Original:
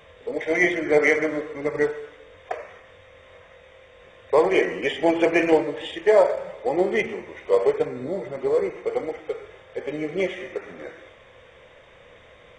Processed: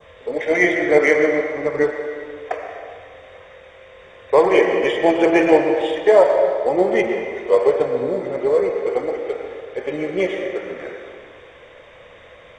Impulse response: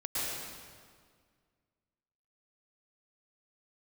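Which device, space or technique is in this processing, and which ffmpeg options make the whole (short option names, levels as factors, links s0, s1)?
filtered reverb send: -filter_complex "[0:a]asettb=1/sr,asplit=3[s0][s1][s2];[s0]atrim=end=1.154[s3];[s1]atrim=start=1.15:end=2.01,asetpts=PTS-STARTPTS,afade=t=in:d=0.004:c=qsin,afade=t=out:st=0.856:d=0.004:c=qsin,lowpass=7800[s4];[s2]atrim=start=2.006[s5];[s3][s4]acrossfade=d=0.004:c1=hsin:c2=qsin[s6];[s6][s5]acrossfade=d=0.004:c1=qsin:c2=hsin,asplit=2[s7][s8];[s8]highpass=300,lowpass=4600[s9];[1:a]atrim=start_sample=2205[s10];[s9][s10]afir=irnorm=-1:irlink=0,volume=0.355[s11];[s7][s11]amix=inputs=2:normalize=0,adynamicequalizer=threshold=0.0112:dfrequency=2500:dqfactor=1.2:tfrequency=2500:tqfactor=1.2:attack=5:release=100:ratio=0.375:range=2:mode=cutabove:tftype=bell,volume=1.41"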